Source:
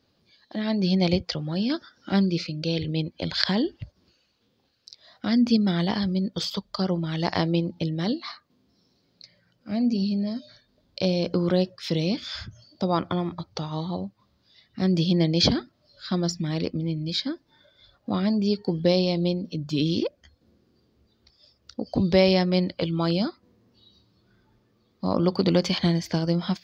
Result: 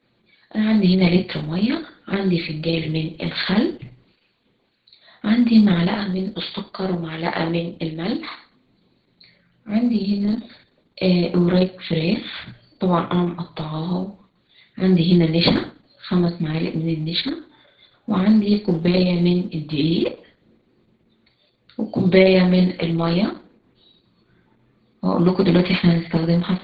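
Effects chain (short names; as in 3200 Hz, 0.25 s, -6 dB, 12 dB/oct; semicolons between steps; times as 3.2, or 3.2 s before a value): 5.87–8.11 HPF 270 Hz 6 dB/oct; hard clip -7 dBFS, distortion -38 dB; brick-wall FIR low-pass 4600 Hz; reverb RT60 0.40 s, pre-delay 3 ms, DRR 2 dB; Opus 10 kbps 48000 Hz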